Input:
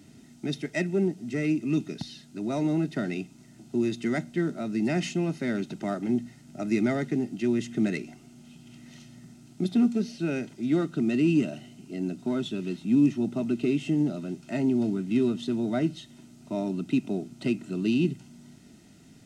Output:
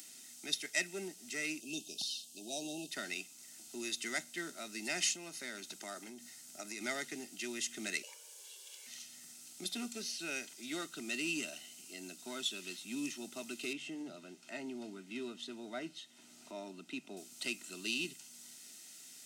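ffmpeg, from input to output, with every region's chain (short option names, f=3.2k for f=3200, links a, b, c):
-filter_complex "[0:a]asettb=1/sr,asplit=3[a][b][c];[a]atrim=end=1.604[d];[b]atrim=start=1.6:end=2.91,asetpts=PTS-STARTPTS,afade=t=in:d=0.004:c=qsin,afade=t=out:st=1.306:d=0.004:c=qsin,asuperstop=centerf=1500:order=20:qfactor=0.84,equalizer=f=3.2k:w=5.2:g=3[e];[c]atrim=start=2.906[f];[d][e]acrossfade=d=0.004:c1=hsin:c2=qsin[g];[g][f]acrossfade=d=0.004:c1=qsin:c2=hsin,asettb=1/sr,asplit=3[h][i][j];[h]atrim=end=5.044[k];[i]atrim=start=5.04:end=6.81,asetpts=PTS-STARTPTS,afade=t=in:d=0.004:c=qsin,afade=t=out:st=1.766:d=0.004:c=qsin,equalizer=f=2.7k:w=1.7:g=-3,acompressor=threshold=-28dB:ratio=4:attack=3.2:release=140:knee=1:detection=peak[l];[j]atrim=start=6.806[m];[k][l]acrossfade=d=0.004:c1=hsin:c2=qsin[n];[n][m]acrossfade=d=0.004:c1=qsin:c2=hsin,asettb=1/sr,asplit=3[o][p][q];[o]atrim=end=8.034[r];[p]atrim=start=8.03:end=8.87,asetpts=PTS-STARTPTS,afade=t=in:d=0.004:c=qsin,afade=t=out:st=0.836:d=0.004:c=qsin,highpass=260,bandreject=f=60:t=h:w=6,bandreject=f=120:t=h:w=6,bandreject=f=180:t=h:w=6,bandreject=f=240:t=h:w=6,bandreject=f=300:t=h:w=6,bandreject=f=360:t=h:w=6,bandreject=f=420:t=h:w=6,bandreject=f=480:t=h:w=6,bandreject=f=540:t=h:w=6,afreqshift=220[s];[q]atrim=start=8.866[t];[r][s]acrossfade=d=0.004:c1=hsin:c2=qsin[u];[u][t]acrossfade=d=0.004:c1=qsin:c2=hsin,asettb=1/sr,asplit=3[v][w][x];[v]atrim=end=13.734[y];[w]atrim=start=13.73:end=17.17,asetpts=PTS-STARTPTS,afade=t=in:d=0.004:c=qsin,afade=t=out:st=3.436:d=0.004:c=qsin,lowpass=f=1.6k:p=1,bandreject=f=50:t=h:w=6,bandreject=f=100:t=h:w=6,bandreject=f=150:t=h:w=6[z];[x]atrim=start=17.166[aa];[y][z]acrossfade=d=0.004:c1=hsin:c2=qsin[ab];[ab][aa]acrossfade=d=0.004:c1=qsin:c2=hsin,highpass=160,aderivative,acompressor=mode=upward:threshold=-57dB:ratio=2.5,volume=9dB"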